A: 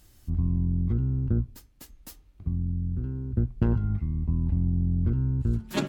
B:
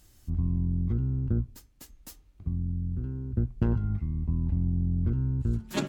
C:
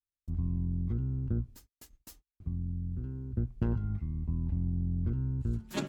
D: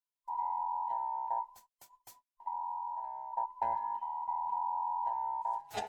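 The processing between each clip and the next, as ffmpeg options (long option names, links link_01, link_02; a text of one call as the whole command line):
ffmpeg -i in.wav -af "equalizer=frequency=6900:width_type=o:width=0.71:gain=3,volume=-2dB" out.wav
ffmpeg -i in.wav -af "agate=range=-42dB:threshold=-50dB:ratio=16:detection=peak,volume=-4.5dB" out.wav
ffmpeg -i in.wav -af "afftfilt=real='real(if(between(b,1,1008),(2*floor((b-1)/48)+1)*48-b,b),0)':imag='imag(if(between(b,1,1008),(2*floor((b-1)/48)+1)*48-b,b),0)*if(between(b,1,1008),-1,1)':win_size=2048:overlap=0.75,volume=-4dB" out.wav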